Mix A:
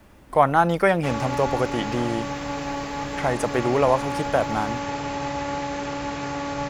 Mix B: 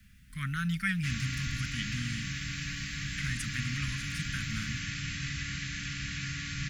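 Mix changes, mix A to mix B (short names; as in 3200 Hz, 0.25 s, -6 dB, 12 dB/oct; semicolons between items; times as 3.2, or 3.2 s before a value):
speech -4.5 dB; master: add inverse Chebyshev band-stop 370–920 Hz, stop band 50 dB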